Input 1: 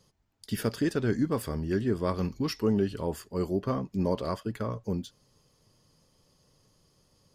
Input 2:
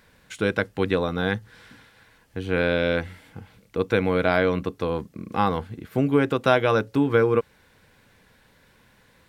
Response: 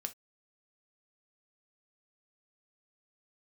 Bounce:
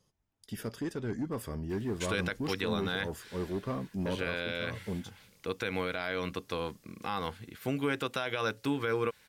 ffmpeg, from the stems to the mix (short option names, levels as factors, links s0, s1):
-filter_complex "[0:a]bandreject=f=4400:w=7.5,dynaudnorm=f=510:g=5:m=1.58,asoftclip=type=tanh:threshold=0.106,volume=0.422[s0];[1:a]tiltshelf=f=1400:g=-7,adelay=1700,volume=0.631[s1];[s0][s1]amix=inputs=2:normalize=0,alimiter=limit=0.1:level=0:latency=1:release=78"